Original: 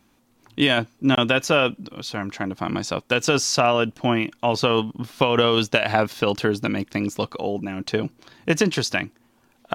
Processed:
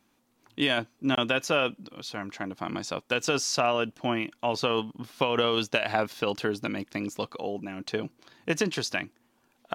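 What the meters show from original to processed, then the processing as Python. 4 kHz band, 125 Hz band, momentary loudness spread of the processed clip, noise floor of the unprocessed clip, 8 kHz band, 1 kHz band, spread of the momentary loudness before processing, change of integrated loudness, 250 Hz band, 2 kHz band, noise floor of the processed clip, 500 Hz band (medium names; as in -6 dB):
-6.0 dB, -10.5 dB, 12 LU, -62 dBFS, -6.0 dB, -6.0 dB, 11 LU, -6.5 dB, -8.0 dB, -6.0 dB, -69 dBFS, -6.5 dB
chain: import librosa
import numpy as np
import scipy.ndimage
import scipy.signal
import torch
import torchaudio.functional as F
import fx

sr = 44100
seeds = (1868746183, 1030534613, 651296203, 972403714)

y = fx.low_shelf(x, sr, hz=130.0, db=-9.0)
y = y * librosa.db_to_amplitude(-6.0)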